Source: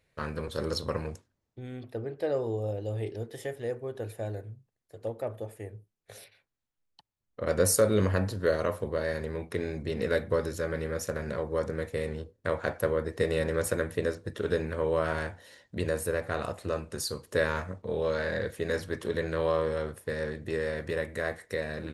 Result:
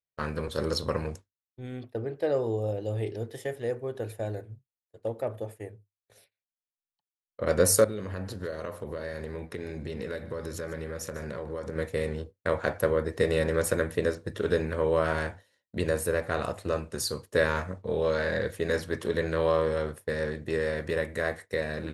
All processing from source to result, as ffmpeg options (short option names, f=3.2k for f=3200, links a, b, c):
-filter_complex "[0:a]asettb=1/sr,asplit=3[a][b][c];[a]atrim=end=7.844[d];[b]atrim=start=7.84:end=11.76,asetpts=PTS-STARTPTS,afade=t=in:d=0.004:c=qsin,afade=t=out:st=3.916:d=0.004:c=qsin,acompressor=threshold=-34dB:ratio=5:attack=3.2:release=140:knee=1:detection=peak,aecho=1:1:149:0.15,atrim=end_sample=172872[e];[c]atrim=start=11.756[f];[d][e]acrossfade=d=0.004:c1=hsin:c2=qsin[g];[g][f]acrossfade=d=0.004:c1=qsin:c2=hsin,bandreject=f=50:t=h:w=6,bandreject=f=100:t=h:w=6,agate=range=-33dB:threshold=-39dB:ratio=3:detection=peak,volume=2.5dB"